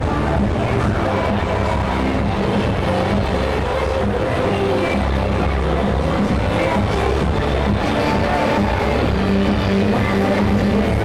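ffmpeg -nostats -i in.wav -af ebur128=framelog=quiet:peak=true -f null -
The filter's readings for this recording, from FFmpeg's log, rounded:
Integrated loudness:
  I:         -18.2 LUFS
  Threshold: -28.2 LUFS
Loudness range:
  LRA:         1.6 LU
  Threshold: -38.3 LUFS
  LRA low:   -18.9 LUFS
  LRA high:  -17.3 LUFS
True peak:
  Peak:       -7.4 dBFS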